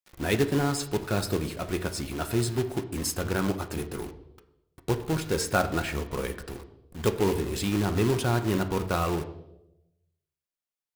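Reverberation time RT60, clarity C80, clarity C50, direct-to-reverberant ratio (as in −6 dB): 0.90 s, 15.0 dB, 12.5 dB, 6.5 dB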